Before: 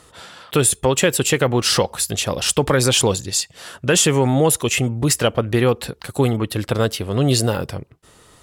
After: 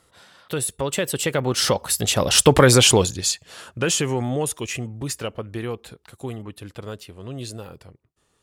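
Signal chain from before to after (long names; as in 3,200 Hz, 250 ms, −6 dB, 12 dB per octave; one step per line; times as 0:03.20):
source passing by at 0:02.52, 17 m/s, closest 7.6 metres
level +4 dB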